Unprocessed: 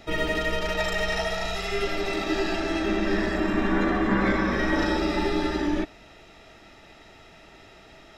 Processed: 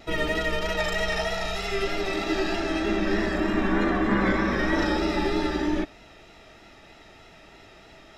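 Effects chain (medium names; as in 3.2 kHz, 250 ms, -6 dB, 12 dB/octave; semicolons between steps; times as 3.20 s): vibrato 3.2 Hz 38 cents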